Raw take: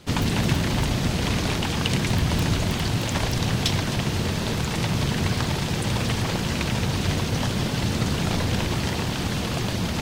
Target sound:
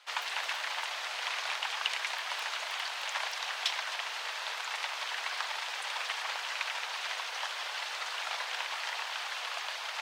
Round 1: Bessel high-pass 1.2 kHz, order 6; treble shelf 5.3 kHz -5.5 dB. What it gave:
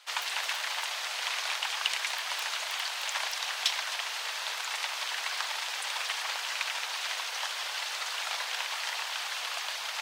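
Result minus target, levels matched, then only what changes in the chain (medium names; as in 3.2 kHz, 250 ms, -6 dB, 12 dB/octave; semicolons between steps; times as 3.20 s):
8 kHz band +4.0 dB
change: treble shelf 5.3 kHz -16.5 dB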